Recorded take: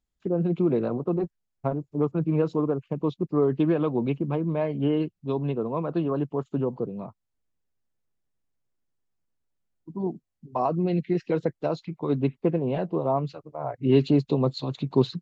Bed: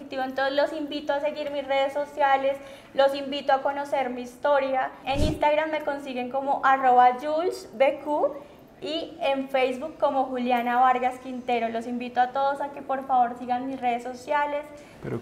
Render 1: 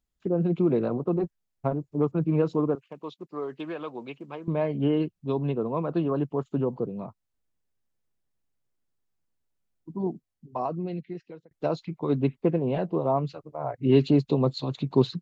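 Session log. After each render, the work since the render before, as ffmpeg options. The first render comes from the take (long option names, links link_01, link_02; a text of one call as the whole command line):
ffmpeg -i in.wav -filter_complex "[0:a]asettb=1/sr,asplit=3[link_01][link_02][link_03];[link_01]atrim=end=2.754[link_04];[link_02]atrim=start=2.75:end=4.48,asetpts=PTS-STARTPTS,afade=type=in:duration=0.004:curve=qsin,afade=type=out:start_time=1.726:duration=0.004:curve=qsin,highpass=frequency=1400:poles=1[link_05];[link_03]atrim=start=4.476[link_06];[link_04][link_05]acrossfade=duration=0.004:curve1=hsin:curve2=qsin[link_07];[link_07][link_06]acrossfade=duration=0.004:curve1=qsin:curve2=hsin,asplit=2[link_08][link_09];[link_08]atrim=end=11.51,asetpts=PTS-STARTPTS,afade=type=out:start_time=10.03:duration=1.48[link_10];[link_09]atrim=start=11.51,asetpts=PTS-STARTPTS,afade=type=in:duration=0.004:curve=hsin[link_11];[link_10][link_11]concat=n=2:v=0:a=1" out.wav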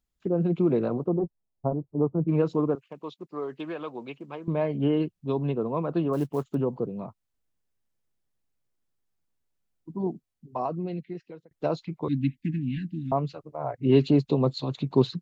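ffmpeg -i in.wav -filter_complex "[0:a]asplit=3[link_01][link_02][link_03];[link_01]afade=type=out:start_time=1.06:duration=0.02[link_04];[link_02]lowpass=frequency=1000:width=0.5412,lowpass=frequency=1000:width=1.3066,afade=type=in:start_time=1.06:duration=0.02,afade=type=out:start_time=2.27:duration=0.02[link_05];[link_03]afade=type=in:start_time=2.27:duration=0.02[link_06];[link_04][link_05][link_06]amix=inputs=3:normalize=0,asettb=1/sr,asplit=3[link_07][link_08][link_09];[link_07]atrim=end=6.134[link_10];[link_08]atrim=start=6.13:end=6.55,asetpts=PTS-STARTPTS,afade=type=in:duration=0.004:curve=qsin,afade=type=out:start_time=0.416:duration=0.004:curve=qsin,acrusher=bits=7:mode=log:mix=0:aa=0.000001[link_11];[link_09]atrim=start=6.546[link_12];[link_10][link_11]acrossfade=duration=0.004:curve1=hsin:curve2=qsin[link_13];[link_13][link_12]acrossfade=duration=0.004:curve1=qsin:curve2=hsin,asettb=1/sr,asplit=3[link_14][link_15][link_16];[link_14]atrim=end=12.084[link_17];[link_15]atrim=start=12.08:end=13.12,asetpts=PTS-STARTPTS,afade=type=in:duration=0.004:curve=qsin,afade=type=out:start_time=1.036:duration=0.004:curve=qsin,asuperstop=centerf=710:order=20:qfactor=0.53[link_18];[link_16]atrim=start=13.116[link_19];[link_17][link_18]acrossfade=duration=0.004:curve1=hsin:curve2=qsin[link_20];[link_20][link_19]acrossfade=duration=0.004:curve1=qsin:curve2=hsin" out.wav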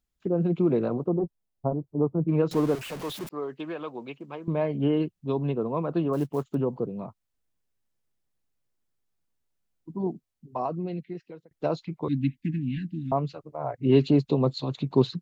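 ffmpeg -i in.wav -filter_complex "[0:a]asettb=1/sr,asplit=3[link_01][link_02][link_03];[link_01]atrim=end=2.514[link_04];[link_02]atrim=start=2.51:end=3.29,asetpts=PTS-STARTPTS,afade=type=in:duration=0.004:curve=qsin,afade=type=out:start_time=0.776:duration=0.004:curve=qsin,aeval=exprs='val(0)+0.5*0.0224*sgn(val(0))':channel_layout=same[link_05];[link_03]atrim=start=3.286[link_06];[link_04][link_05]acrossfade=duration=0.004:curve1=hsin:curve2=qsin[link_07];[link_07][link_06]acrossfade=duration=0.004:curve1=qsin:curve2=hsin" out.wav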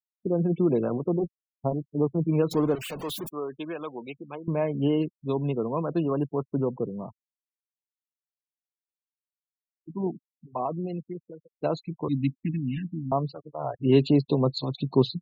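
ffmpeg -i in.wav -af "highshelf=frequency=5500:gain=9.5,afftfilt=real='re*gte(hypot(re,im),0.0112)':imag='im*gte(hypot(re,im),0.0112)':win_size=1024:overlap=0.75" out.wav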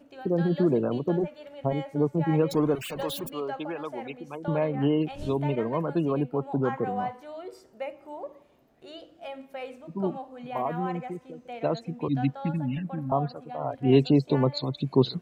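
ffmpeg -i in.wav -i bed.wav -filter_complex "[1:a]volume=-14.5dB[link_01];[0:a][link_01]amix=inputs=2:normalize=0" out.wav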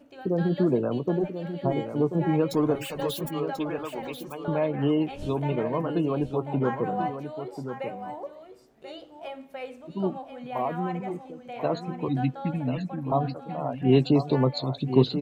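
ffmpeg -i in.wav -filter_complex "[0:a]asplit=2[link_01][link_02];[link_02]adelay=16,volume=-13dB[link_03];[link_01][link_03]amix=inputs=2:normalize=0,asplit=2[link_04][link_05];[link_05]aecho=0:1:1037:0.355[link_06];[link_04][link_06]amix=inputs=2:normalize=0" out.wav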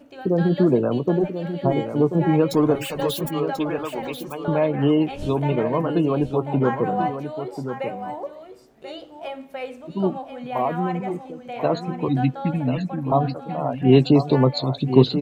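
ffmpeg -i in.wav -af "volume=5.5dB" out.wav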